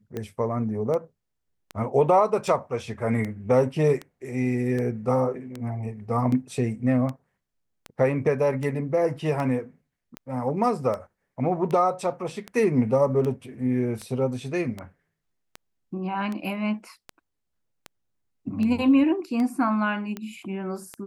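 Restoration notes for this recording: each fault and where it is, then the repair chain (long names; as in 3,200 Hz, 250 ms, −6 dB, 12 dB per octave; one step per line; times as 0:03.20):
scratch tick 78 rpm −19 dBFS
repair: click removal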